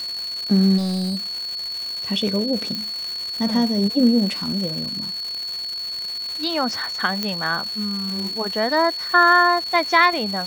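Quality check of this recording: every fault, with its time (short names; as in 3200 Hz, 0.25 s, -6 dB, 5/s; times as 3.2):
crackle 420/s -27 dBFS
tone 4400 Hz -26 dBFS
0.77–1.26 clipped -21 dBFS
2.75 pop -13 dBFS
7.23 pop -8 dBFS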